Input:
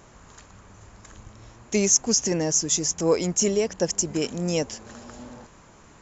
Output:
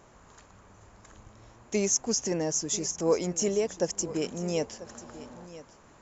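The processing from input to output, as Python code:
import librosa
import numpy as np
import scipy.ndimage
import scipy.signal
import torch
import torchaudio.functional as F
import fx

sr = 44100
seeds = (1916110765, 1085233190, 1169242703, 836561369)

p1 = fx.peak_eq(x, sr, hz=650.0, db=4.5, octaves=2.5)
p2 = p1 + fx.echo_single(p1, sr, ms=991, db=-16.5, dry=0)
y = p2 * librosa.db_to_amplitude(-7.5)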